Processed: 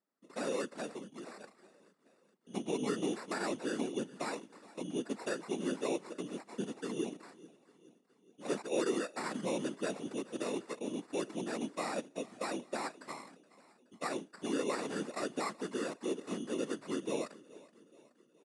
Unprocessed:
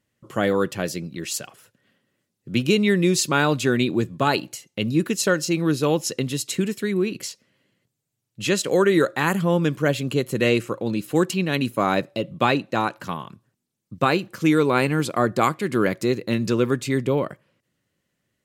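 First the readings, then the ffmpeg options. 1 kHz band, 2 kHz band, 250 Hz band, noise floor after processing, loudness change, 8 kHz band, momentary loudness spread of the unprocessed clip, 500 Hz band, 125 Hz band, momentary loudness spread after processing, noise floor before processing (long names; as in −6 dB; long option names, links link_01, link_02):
−16.5 dB, −18.0 dB, −15.5 dB, −70 dBFS, −16.0 dB, −15.5 dB, 10 LU, −15.0 dB, −25.0 dB, 12 LU, −79 dBFS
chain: -filter_complex "[0:a]alimiter=limit=-10.5dB:level=0:latency=1:release=99,acrossover=split=4300[link_01][link_02];[link_02]acompressor=threshold=-44dB:ratio=4:attack=1:release=60[link_03];[link_01][link_03]amix=inputs=2:normalize=0,acrusher=samples=14:mix=1:aa=0.000001,highshelf=frequency=2500:gain=-9,asplit=2[link_04][link_05];[link_05]aecho=0:1:423|846|1269|1692:0.0944|0.051|0.0275|0.0149[link_06];[link_04][link_06]amix=inputs=2:normalize=0,afftfilt=real='hypot(re,im)*cos(2*PI*random(0))':imag='hypot(re,im)*sin(2*PI*random(1))':win_size=512:overlap=0.75,highpass=frequency=210:width=0.5412,highpass=frequency=210:width=1.3066,aresample=22050,aresample=44100,aemphasis=mode=production:type=50kf,volume=-7dB"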